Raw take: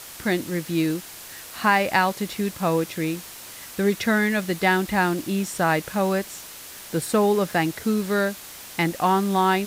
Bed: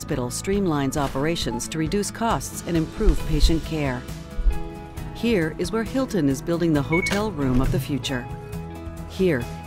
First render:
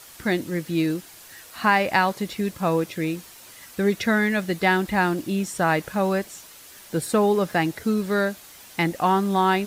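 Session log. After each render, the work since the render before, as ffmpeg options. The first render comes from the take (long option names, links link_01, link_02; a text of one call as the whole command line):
ffmpeg -i in.wav -af "afftdn=noise_reduction=7:noise_floor=-41" out.wav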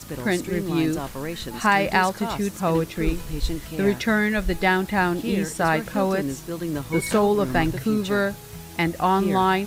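ffmpeg -i in.wav -i bed.wav -filter_complex "[1:a]volume=-7.5dB[link_01];[0:a][link_01]amix=inputs=2:normalize=0" out.wav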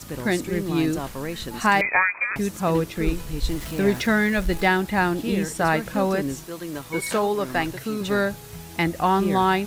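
ffmpeg -i in.wav -filter_complex "[0:a]asettb=1/sr,asplit=3[link_01][link_02][link_03];[link_01]atrim=end=1.814[link_04];[link_02]atrim=start=1.81:end=2.36,asetpts=PTS-STARTPTS,afade=type=in:duration=0.004:curve=qsin,afade=type=out:start_time=0.546:duration=0.004:curve=qsin,lowpass=frequency=2200:width_type=q:width=0.5098,lowpass=frequency=2200:width_type=q:width=0.6013,lowpass=frequency=2200:width_type=q:width=0.9,lowpass=frequency=2200:width_type=q:width=2.563,afreqshift=-2600[link_05];[link_03]atrim=start=2.356[link_06];[link_04][link_05]acrossfade=duration=0.004:curve1=hsin:curve2=qsin[link_07];[link_07][link_06]acrossfade=duration=0.004:curve1=qsin:curve2=hsin,asettb=1/sr,asplit=3[link_08][link_09][link_10];[link_08]atrim=end=3.484[link_11];[link_09]atrim=start=3.48:end=4.68,asetpts=PTS-STARTPTS,afade=type=in:duration=0.004:curve=qsin,afade=type=out:start_time=1.196:duration=0.004:curve=qsin,aeval=exprs='val(0)+0.5*0.0188*sgn(val(0))':channel_layout=same[link_12];[link_10]atrim=start=4.676[link_13];[link_11][link_12]acrossfade=duration=0.004:curve1=hsin:curve2=qsin[link_14];[link_14][link_13]acrossfade=duration=0.004:curve1=qsin:curve2=hsin,asettb=1/sr,asplit=3[link_15][link_16][link_17];[link_15]atrim=end=6.444[link_18];[link_16]atrim=start=6.44:end=8.01,asetpts=PTS-STARTPTS,afade=type=in:duration=0.004:curve=qsin,afade=type=out:start_time=1.566:duration=0.004:curve=qsin,lowshelf=frequency=290:gain=-10.5[link_19];[link_17]atrim=start=8.006[link_20];[link_18][link_19]acrossfade=duration=0.004:curve1=hsin:curve2=qsin[link_21];[link_21][link_20]acrossfade=duration=0.004:curve1=qsin:curve2=hsin" out.wav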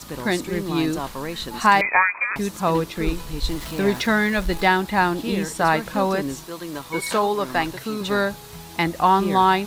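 ffmpeg -i in.wav -af "equalizer=frequency=100:width_type=o:width=0.67:gain=-6,equalizer=frequency=1000:width_type=o:width=0.67:gain=6,equalizer=frequency=4000:width_type=o:width=0.67:gain=5" out.wav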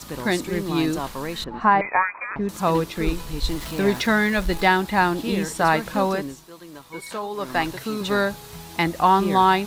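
ffmpeg -i in.wav -filter_complex "[0:a]asettb=1/sr,asplit=3[link_01][link_02][link_03];[link_01]atrim=end=1.444[link_04];[link_02]atrim=start=1.44:end=2.49,asetpts=PTS-STARTPTS,afade=type=in:duration=0.004:curve=qsin,afade=type=out:start_time=1.046:duration=0.004:curve=qsin,lowpass=1400[link_05];[link_03]atrim=start=2.486[link_06];[link_04][link_05]acrossfade=duration=0.004:curve1=hsin:curve2=qsin[link_07];[link_07][link_06]acrossfade=duration=0.004:curve1=qsin:curve2=hsin,asplit=3[link_08][link_09][link_10];[link_08]atrim=end=6.36,asetpts=PTS-STARTPTS,afade=type=out:start_time=5.95:duration=0.41:curve=qsin:silence=0.334965[link_11];[link_09]atrim=start=6.36:end=7.3,asetpts=PTS-STARTPTS,volume=-9.5dB[link_12];[link_10]atrim=start=7.3,asetpts=PTS-STARTPTS,afade=type=in:duration=0.41:curve=qsin:silence=0.334965[link_13];[link_11][link_12][link_13]concat=n=3:v=0:a=1" out.wav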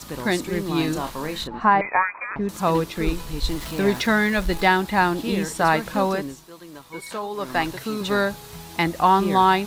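ffmpeg -i in.wav -filter_complex "[0:a]asettb=1/sr,asplit=3[link_01][link_02][link_03];[link_01]atrim=end=0.774[link_04];[link_02]atrim=start=0.77:end=1.48,asetpts=PTS-STARTPTS,afade=type=in:duration=0.004:curve=qsin,afade=type=out:start_time=0.706:duration=0.004:curve=qsin,asplit=2[link_05][link_06];[link_06]adelay=33,volume=-8dB[link_07];[link_05][link_07]amix=inputs=2:normalize=0,atrim=end_sample=31311[link_08];[link_03]atrim=start=1.476[link_09];[link_04][link_08]acrossfade=duration=0.004:curve1=hsin:curve2=qsin[link_10];[link_10][link_09]acrossfade=duration=0.004:curve1=qsin:curve2=hsin" out.wav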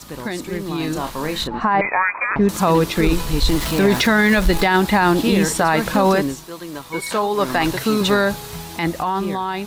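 ffmpeg -i in.wav -af "alimiter=limit=-16.5dB:level=0:latency=1:release=37,dynaudnorm=framelen=260:gausssize=11:maxgain=10dB" out.wav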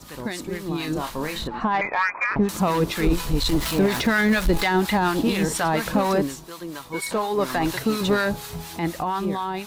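ffmpeg -i in.wav -filter_complex "[0:a]asoftclip=type=tanh:threshold=-9.5dB,acrossover=split=870[link_01][link_02];[link_01]aeval=exprs='val(0)*(1-0.7/2+0.7/2*cos(2*PI*4.2*n/s))':channel_layout=same[link_03];[link_02]aeval=exprs='val(0)*(1-0.7/2-0.7/2*cos(2*PI*4.2*n/s))':channel_layout=same[link_04];[link_03][link_04]amix=inputs=2:normalize=0" out.wav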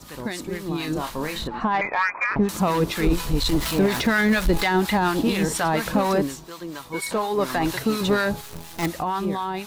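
ffmpeg -i in.wav -filter_complex "[0:a]asettb=1/sr,asplit=3[link_01][link_02][link_03];[link_01]atrim=end=6.374[link_04];[link_02]atrim=start=6.37:end=6.79,asetpts=PTS-STARTPTS,afade=type=in:duration=0.004:curve=qsin,afade=type=out:start_time=0.416:duration=0.004:curve=qsin,equalizer=frequency=11000:width_type=o:width=0.42:gain=-8[link_05];[link_03]atrim=start=6.786[link_06];[link_04][link_05]acrossfade=duration=0.004:curve1=hsin:curve2=qsin[link_07];[link_07][link_06]acrossfade=duration=0.004:curve1=qsin:curve2=hsin,asettb=1/sr,asplit=3[link_08][link_09][link_10];[link_08]atrim=end=8.414[link_11];[link_09]atrim=start=8.41:end=8.86,asetpts=PTS-STARTPTS,afade=type=in:duration=0.004:curve=qsin,afade=type=out:start_time=0.446:duration=0.004:curve=qsin,acrusher=bits=5:dc=4:mix=0:aa=0.000001[link_12];[link_10]atrim=start=8.856[link_13];[link_11][link_12]acrossfade=duration=0.004:curve1=hsin:curve2=qsin[link_14];[link_14][link_13]acrossfade=duration=0.004:curve1=qsin:curve2=hsin" out.wav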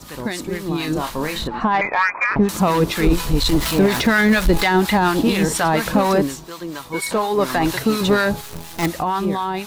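ffmpeg -i in.wav -af "volume=4.5dB" out.wav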